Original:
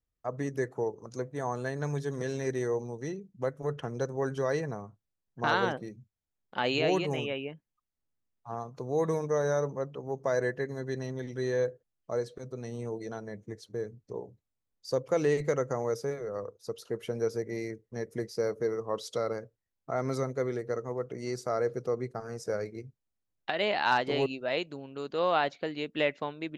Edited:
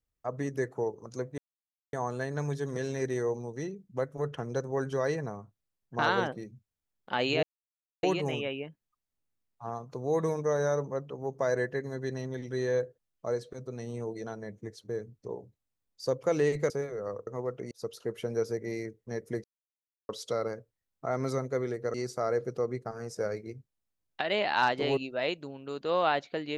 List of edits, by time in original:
0:01.38: splice in silence 0.55 s
0:06.88: splice in silence 0.60 s
0:15.55–0:15.99: remove
0:18.29–0:18.94: silence
0:20.79–0:21.23: move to 0:16.56

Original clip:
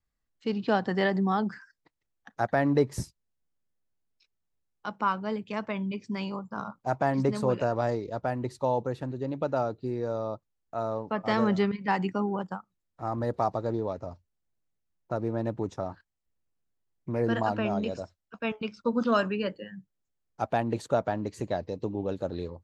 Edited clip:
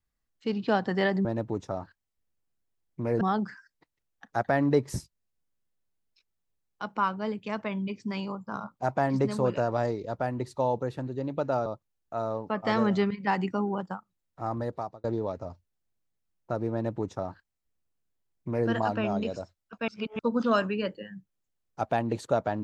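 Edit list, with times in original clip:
0:09.70–0:10.27: remove
0:13.12–0:13.65: fade out
0:15.34–0:17.30: duplicate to 0:01.25
0:18.49–0:18.80: reverse

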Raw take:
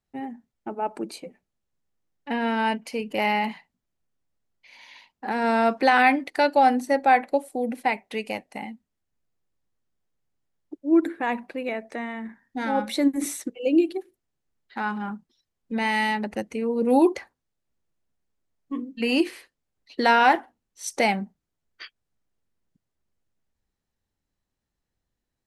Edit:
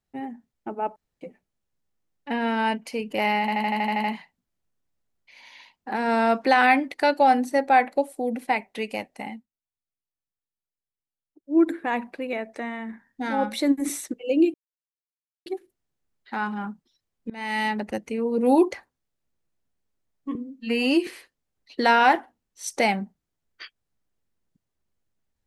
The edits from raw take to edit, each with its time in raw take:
0:00.96–0:01.21: fill with room tone
0:03.40: stutter 0.08 s, 9 plays
0:08.71–0:10.91: duck −18 dB, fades 0.12 s
0:13.90: splice in silence 0.92 s
0:15.74–0:16.11: fade in linear, from −23 dB
0:18.79–0:19.27: time-stretch 1.5×

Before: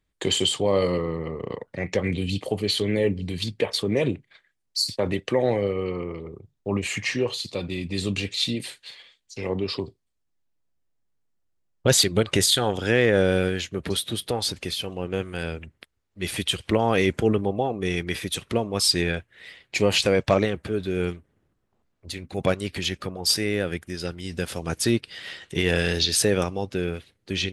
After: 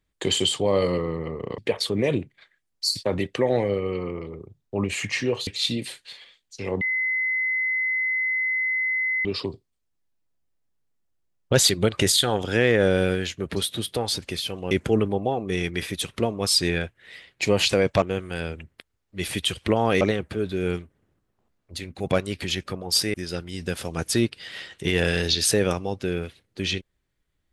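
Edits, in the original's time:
0:01.58–0:03.51: remove
0:07.40–0:08.25: remove
0:09.59: insert tone 2,040 Hz −21.5 dBFS 2.44 s
0:15.05–0:17.04: move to 0:20.35
0:23.48–0:23.85: remove

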